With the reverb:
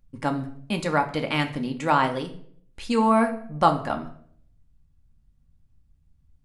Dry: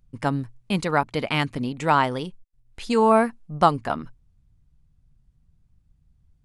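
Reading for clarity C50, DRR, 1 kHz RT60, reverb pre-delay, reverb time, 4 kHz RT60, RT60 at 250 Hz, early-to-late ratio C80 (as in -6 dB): 12.5 dB, 4.0 dB, 0.55 s, 3 ms, 0.60 s, 0.45 s, 0.70 s, 16.5 dB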